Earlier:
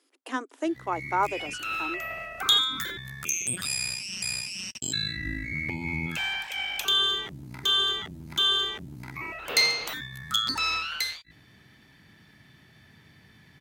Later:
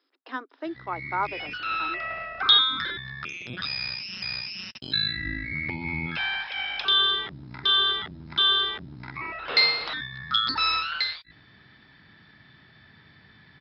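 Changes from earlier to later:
background +5.5 dB
master: add Chebyshev low-pass with heavy ripple 5,300 Hz, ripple 6 dB

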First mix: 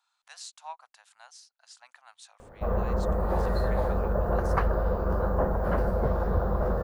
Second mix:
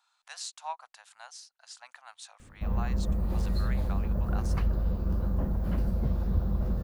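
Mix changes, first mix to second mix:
speech +4.0 dB
background: add flat-topped bell 840 Hz −15 dB 2.5 octaves

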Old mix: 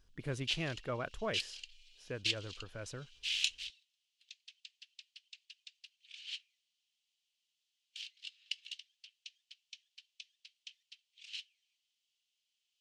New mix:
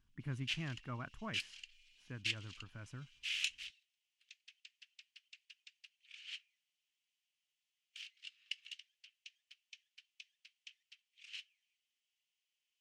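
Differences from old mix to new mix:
speech −8.5 dB
master: add octave-band graphic EQ 125/250/500/1,000/2,000/4,000/8,000 Hz +7/+8/−12/+6/+4/−9/−3 dB

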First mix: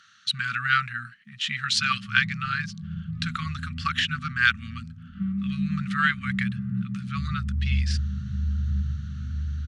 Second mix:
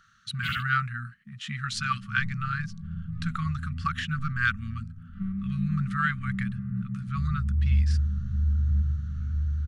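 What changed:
first sound: unmuted
second sound: add tilt shelving filter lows −7.5 dB, about 850 Hz
master: remove meter weighting curve D

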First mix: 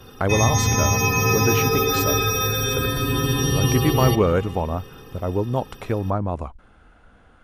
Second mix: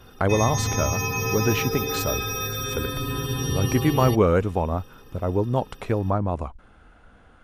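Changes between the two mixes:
background −4.0 dB
reverb: off

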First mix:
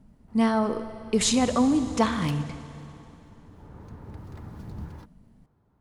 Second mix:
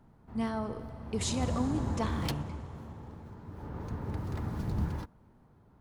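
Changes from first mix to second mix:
speech −11.0 dB
background +6.0 dB

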